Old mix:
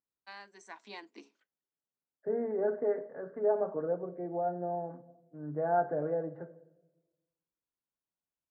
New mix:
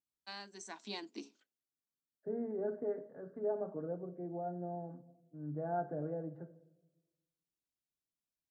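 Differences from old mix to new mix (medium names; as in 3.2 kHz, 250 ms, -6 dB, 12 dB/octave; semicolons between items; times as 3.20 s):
first voice +9.5 dB; master: add graphic EQ 500/1000/2000 Hz -7/-8/-11 dB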